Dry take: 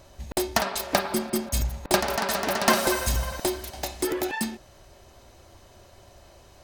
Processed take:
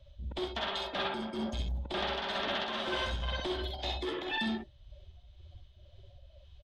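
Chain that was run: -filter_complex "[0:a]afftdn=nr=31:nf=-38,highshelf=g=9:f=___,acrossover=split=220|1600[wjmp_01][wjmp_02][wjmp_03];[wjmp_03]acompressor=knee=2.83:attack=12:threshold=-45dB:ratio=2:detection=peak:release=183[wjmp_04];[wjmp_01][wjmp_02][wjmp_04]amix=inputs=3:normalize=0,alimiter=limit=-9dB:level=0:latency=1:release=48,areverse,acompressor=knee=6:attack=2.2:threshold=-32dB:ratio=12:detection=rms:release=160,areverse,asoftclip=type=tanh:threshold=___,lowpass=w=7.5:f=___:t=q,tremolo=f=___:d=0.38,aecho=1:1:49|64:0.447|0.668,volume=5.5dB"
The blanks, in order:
2100, -37dB, 3400, 2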